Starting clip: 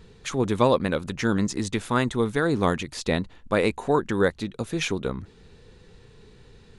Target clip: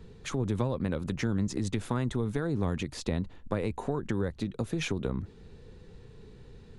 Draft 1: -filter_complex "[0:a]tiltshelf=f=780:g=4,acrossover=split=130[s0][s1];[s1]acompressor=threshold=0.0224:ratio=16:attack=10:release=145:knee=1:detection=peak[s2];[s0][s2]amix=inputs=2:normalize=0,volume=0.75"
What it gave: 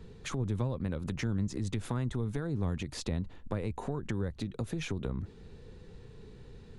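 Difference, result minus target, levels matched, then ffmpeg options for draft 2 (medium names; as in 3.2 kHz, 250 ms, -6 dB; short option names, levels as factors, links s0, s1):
compression: peak gain reduction +6 dB
-filter_complex "[0:a]tiltshelf=f=780:g=4,acrossover=split=130[s0][s1];[s1]acompressor=threshold=0.0473:ratio=16:attack=10:release=145:knee=1:detection=peak[s2];[s0][s2]amix=inputs=2:normalize=0,volume=0.75"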